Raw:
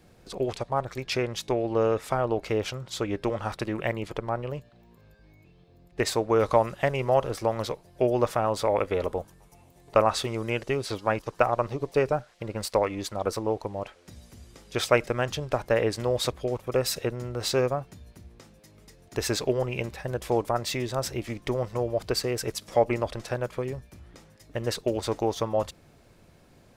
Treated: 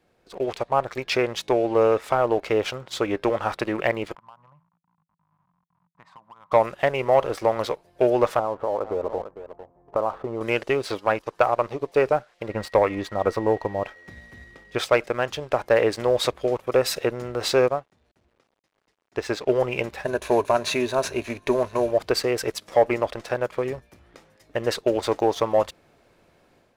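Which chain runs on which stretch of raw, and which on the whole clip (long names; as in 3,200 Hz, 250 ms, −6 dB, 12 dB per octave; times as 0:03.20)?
0:04.15–0:06.52: hold until the input has moved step −46.5 dBFS + pair of resonant band-passes 410 Hz, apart 2.6 octaves + downward compressor 4 to 1, threshold −48 dBFS
0:08.39–0:10.41: low-pass filter 1,200 Hz 24 dB per octave + single-tap delay 448 ms −17 dB + downward compressor 2.5 to 1, threshold −29 dBFS
0:12.49–0:14.77: bass and treble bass +6 dB, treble −9 dB + steady tone 1,900 Hz −49 dBFS
0:17.68–0:19.51: centre clipping without the shift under −49 dBFS + high-frequency loss of the air 53 metres + expander for the loud parts, over −45 dBFS
0:20.03–0:21.91: variable-slope delta modulation 64 kbit/s + EQ curve with evenly spaced ripples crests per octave 1.5, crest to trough 9 dB
whole clip: automatic gain control gain up to 7.5 dB; bass and treble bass −10 dB, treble −7 dB; leveller curve on the samples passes 1; level −4 dB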